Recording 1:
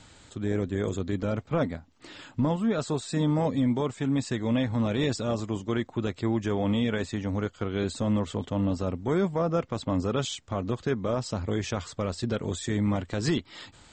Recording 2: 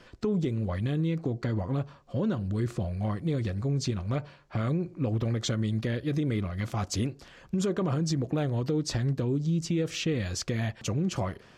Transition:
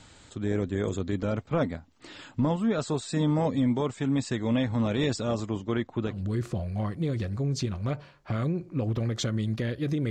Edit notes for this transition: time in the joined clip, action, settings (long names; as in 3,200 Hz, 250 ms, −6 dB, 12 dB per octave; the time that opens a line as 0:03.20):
recording 1
0:05.49–0:06.22: high-frequency loss of the air 88 metres
0:06.13: continue with recording 2 from 0:02.38, crossfade 0.18 s